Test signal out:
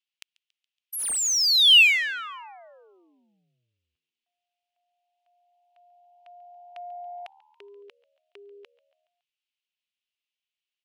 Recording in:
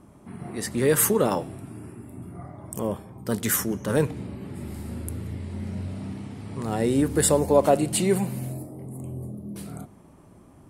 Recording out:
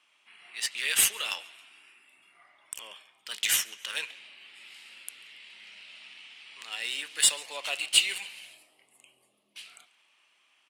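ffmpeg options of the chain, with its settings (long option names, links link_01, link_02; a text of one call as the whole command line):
ffmpeg -i in.wav -filter_complex "[0:a]highpass=frequency=2800:width_type=q:width=3.7,asplit=5[link_01][link_02][link_03][link_04][link_05];[link_02]adelay=140,afreqshift=75,volume=-20.5dB[link_06];[link_03]adelay=280,afreqshift=150,volume=-25.5dB[link_07];[link_04]adelay=420,afreqshift=225,volume=-30.6dB[link_08];[link_05]adelay=560,afreqshift=300,volume=-35.6dB[link_09];[link_01][link_06][link_07][link_08][link_09]amix=inputs=5:normalize=0,adynamicsmooth=sensitivity=6:basefreq=4800,volume=3dB" out.wav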